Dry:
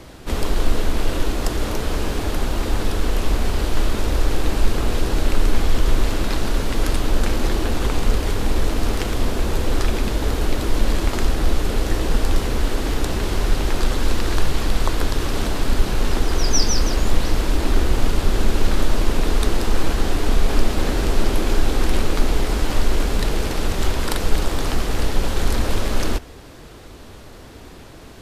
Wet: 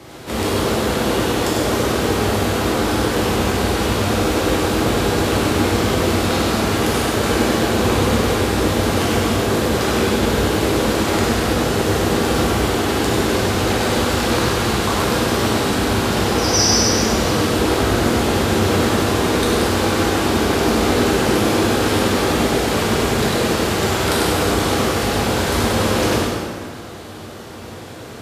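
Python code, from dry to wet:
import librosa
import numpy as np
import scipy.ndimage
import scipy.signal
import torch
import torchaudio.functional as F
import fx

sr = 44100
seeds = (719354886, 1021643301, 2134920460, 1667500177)

p1 = scipy.signal.sosfilt(scipy.signal.butter(4, 89.0, 'highpass', fs=sr, output='sos'), x)
p2 = p1 + fx.echo_single(p1, sr, ms=99, db=-4.5, dry=0)
y = fx.rev_plate(p2, sr, seeds[0], rt60_s=1.9, hf_ratio=0.7, predelay_ms=0, drr_db=-6.0)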